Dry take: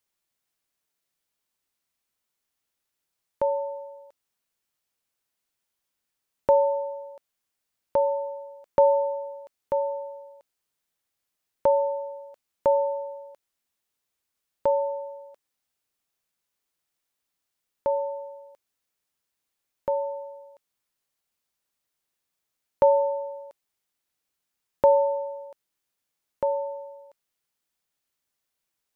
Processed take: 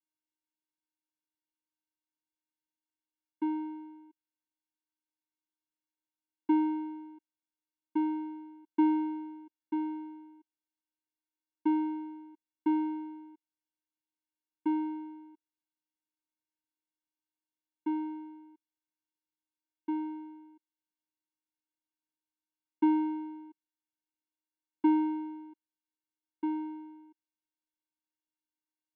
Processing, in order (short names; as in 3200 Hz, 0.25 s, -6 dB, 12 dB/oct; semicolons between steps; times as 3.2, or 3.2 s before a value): notch 850 Hz, Q 5.1; vocoder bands 4, square 310 Hz; gain -5 dB